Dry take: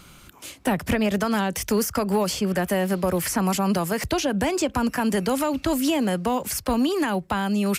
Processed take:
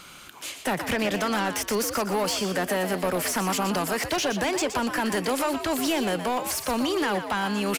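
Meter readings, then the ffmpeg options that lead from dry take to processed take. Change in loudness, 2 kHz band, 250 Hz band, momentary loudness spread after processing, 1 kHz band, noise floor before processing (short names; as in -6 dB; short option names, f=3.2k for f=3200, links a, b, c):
-2.0 dB, +1.5 dB, -5.5 dB, 2 LU, -0.5 dB, -49 dBFS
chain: -filter_complex "[0:a]asplit=2[a][b];[b]highpass=f=720:p=1,volume=16dB,asoftclip=type=tanh:threshold=-13.5dB[c];[a][c]amix=inputs=2:normalize=0,lowpass=f=7.4k:p=1,volume=-6dB,asplit=5[d][e][f][g][h];[e]adelay=120,afreqshift=74,volume=-9dB[i];[f]adelay=240,afreqshift=148,volume=-18.6dB[j];[g]adelay=360,afreqshift=222,volume=-28.3dB[k];[h]adelay=480,afreqshift=296,volume=-37.9dB[l];[d][i][j][k][l]amix=inputs=5:normalize=0,volume=-5dB"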